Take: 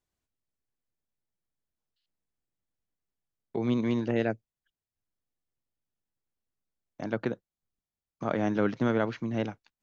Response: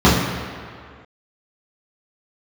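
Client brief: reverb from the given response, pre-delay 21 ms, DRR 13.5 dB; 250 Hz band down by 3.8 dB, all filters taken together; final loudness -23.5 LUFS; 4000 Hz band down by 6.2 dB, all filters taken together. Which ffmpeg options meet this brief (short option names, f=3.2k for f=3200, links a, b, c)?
-filter_complex "[0:a]equalizer=f=250:t=o:g=-4.5,equalizer=f=4k:t=o:g=-8.5,asplit=2[a][b];[1:a]atrim=start_sample=2205,adelay=21[c];[b][c]afir=irnorm=-1:irlink=0,volume=-40.5dB[d];[a][d]amix=inputs=2:normalize=0,volume=8dB"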